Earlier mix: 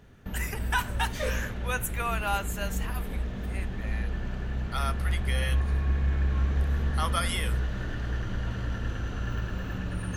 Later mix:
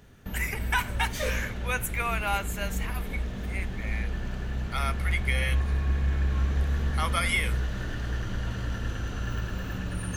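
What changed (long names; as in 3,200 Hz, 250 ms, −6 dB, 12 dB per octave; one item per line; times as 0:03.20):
speech: add parametric band 2,200 Hz +14 dB 0.21 octaves
background: add high-shelf EQ 4,400 Hz +8 dB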